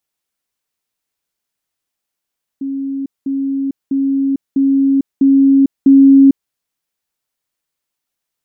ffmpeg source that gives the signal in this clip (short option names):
-f lavfi -i "aevalsrc='pow(10,(-18+3*floor(t/0.65))/20)*sin(2*PI*273*t)*clip(min(mod(t,0.65),0.45-mod(t,0.65))/0.005,0,1)':d=3.9:s=44100"